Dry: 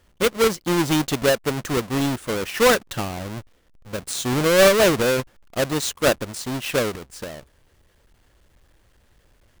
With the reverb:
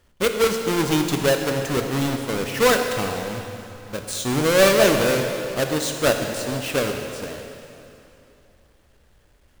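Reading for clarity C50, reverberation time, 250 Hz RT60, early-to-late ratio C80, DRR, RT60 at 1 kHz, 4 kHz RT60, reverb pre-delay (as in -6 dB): 5.0 dB, 2.9 s, 2.9 s, 5.5 dB, 4.0 dB, 2.9 s, 2.7 s, 6 ms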